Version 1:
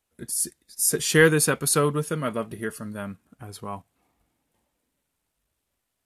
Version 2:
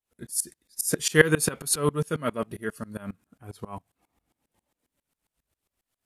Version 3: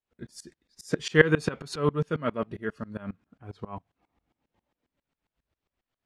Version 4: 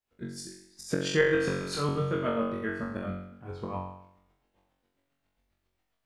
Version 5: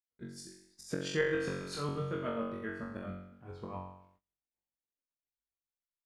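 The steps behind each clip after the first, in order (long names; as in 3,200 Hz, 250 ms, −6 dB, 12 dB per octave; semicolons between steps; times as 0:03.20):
tremolo with a ramp in dB swelling 7.4 Hz, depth 23 dB; level +4.5 dB
high-frequency loss of the air 170 metres
flutter between parallel walls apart 3.7 metres, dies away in 0.72 s; downward compressor 2 to 1, threshold −28 dBFS, peak gain reduction 10.5 dB
noise gate −59 dBFS, range −24 dB; level −7 dB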